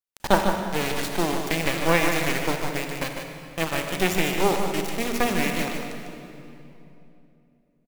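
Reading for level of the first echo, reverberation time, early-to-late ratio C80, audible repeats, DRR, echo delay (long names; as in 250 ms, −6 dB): −7.5 dB, 3.0 s, 3.5 dB, 1, 2.5 dB, 150 ms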